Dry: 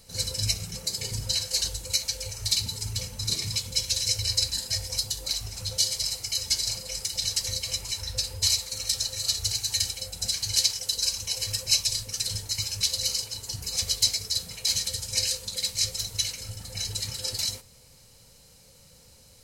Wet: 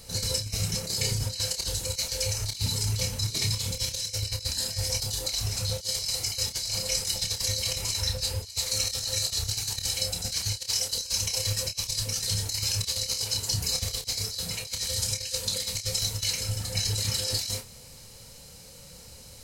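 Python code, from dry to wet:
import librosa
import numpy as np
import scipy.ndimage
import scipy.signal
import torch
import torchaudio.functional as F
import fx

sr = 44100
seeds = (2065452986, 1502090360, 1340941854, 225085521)

y = fx.over_compress(x, sr, threshold_db=-32.0, ratio=-0.5)
y = fx.doubler(y, sr, ms=29.0, db=-7.0)
y = y * 10.0 ** (2.5 / 20.0)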